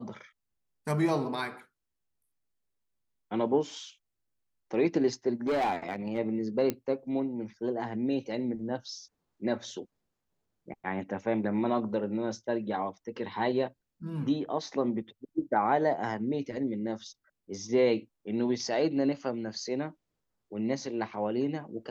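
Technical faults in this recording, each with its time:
0:05.47–0:06.19: clipping −24.5 dBFS
0:06.70: click −14 dBFS

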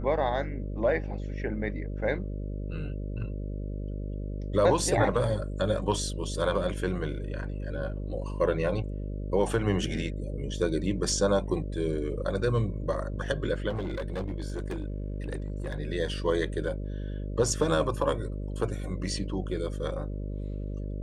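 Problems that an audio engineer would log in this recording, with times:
mains buzz 50 Hz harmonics 12 −34 dBFS
0:13.69–0:15.80: clipping −28.5 dBFS

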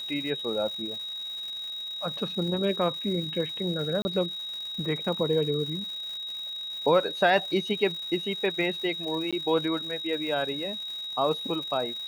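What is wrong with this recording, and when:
surface crackle 300 per second −37 dBFS
whistle 3,800 Hz −33 dBFS
0:04.02–0:04.05: drop-out 30 ms
0:09.31–0:09.33: drop-out 16 ms

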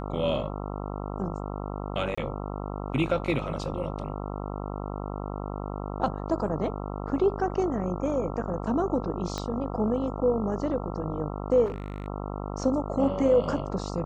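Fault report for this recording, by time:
mains buzz 50 Hz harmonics 27 −34 dBFS
0:02.15–0:02.17: drop-out 25 ms
0:09.38: click −18 dBFS
0:11.65–0:12.08: clipping −28.5 dBFS

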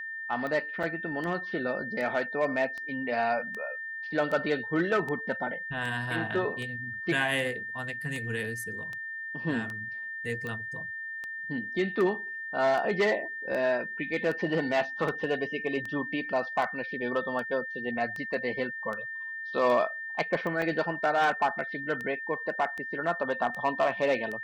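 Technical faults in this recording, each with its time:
scratch tick 78 rpm −24 dBFS
whistle 1,800 Hz −35 dBFS
0:00.83–0:00.84: drop-out 5.3 ms
0:20.62: drop-out 2.6 ms

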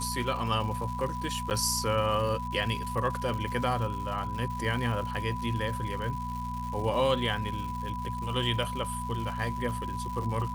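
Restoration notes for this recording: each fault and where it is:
surface crackle 270 per second −37 dBFS
mains hum 60 Hz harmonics 4 −37 dBFS
whistle 990 Hz −35 dBFS
0:01.50–0:01.51: drop-out 9.1 ms

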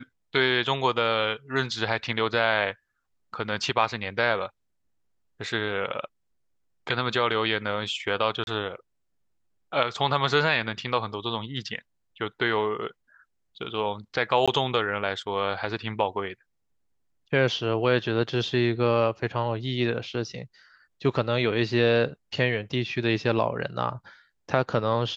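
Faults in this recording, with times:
0:08.44–0:08.47: drop-out 31 ms
0:14.46–0:14.48: drop-out 16 ms

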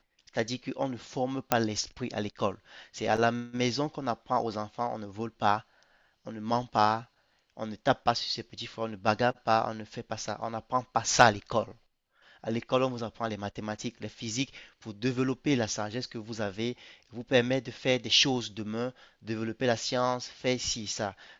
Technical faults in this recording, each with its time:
0:01.52: click −7 dBFS

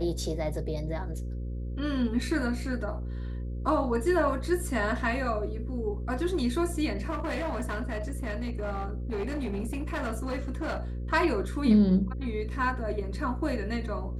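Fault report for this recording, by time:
mains buzz 60 Hz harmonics 9 −34 dBFS
0:07.09–0:10.80: clipping −27.5 dBFS

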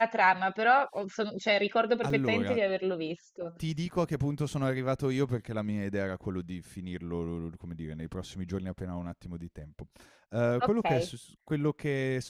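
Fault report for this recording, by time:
0:02.10: drop-out 3.3 ms

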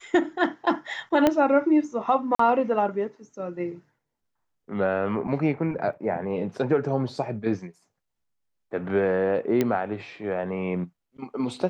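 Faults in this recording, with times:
0:01.27: click −7 dBFS
0:02.35–0:02.39: drop-out 44 ms
0:05.93: drop-out 4 ms
0:09.61: click −10 dBFS

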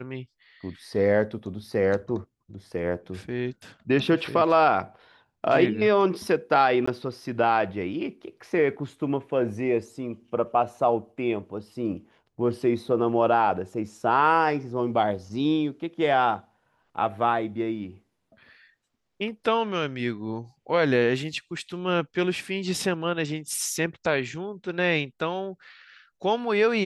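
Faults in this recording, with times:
0:06.86–0:06.88: drop-out 15 ms

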